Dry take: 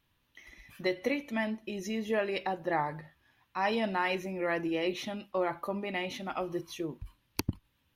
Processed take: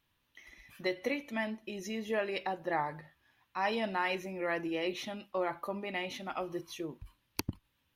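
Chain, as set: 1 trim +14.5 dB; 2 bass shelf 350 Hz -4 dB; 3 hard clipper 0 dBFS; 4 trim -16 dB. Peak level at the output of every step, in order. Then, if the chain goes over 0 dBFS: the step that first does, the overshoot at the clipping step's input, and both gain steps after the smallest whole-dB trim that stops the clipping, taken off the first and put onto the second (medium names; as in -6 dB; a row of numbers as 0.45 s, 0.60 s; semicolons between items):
-1.0 dBFS, -1.5 dBFS, -1.5 dBFS, -17.5 dBFS; nothing clips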